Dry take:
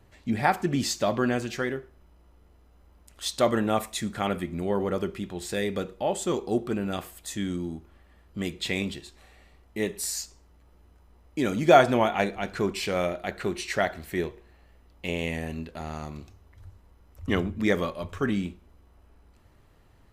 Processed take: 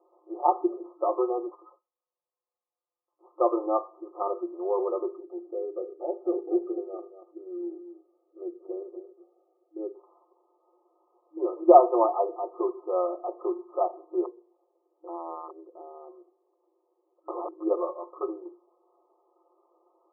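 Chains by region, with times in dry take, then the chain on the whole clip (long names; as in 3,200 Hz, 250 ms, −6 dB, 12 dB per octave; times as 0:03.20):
0:01.51–0:03.27: high-frequency loss of the air 150 metres + voice inversion scrambler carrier 3,500 Hz + expander for the loud parts, over −51 dBFS
0:05.23–0:09.95: phaser with its sweep stopped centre 2,400 Hz, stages 4 + single-tap delay 234 ms −10.5 dB
0:14.24–0:17.52: resonant band-pass 200 Hz, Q 0.67 + wrap-around overflow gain 25 dB
whole clip: adaptive Wiener filter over 9 samples; brick-wall band-pass 320–1,300 Hz; comb filter 5.7 ms, depth 86%; level −1.5 dB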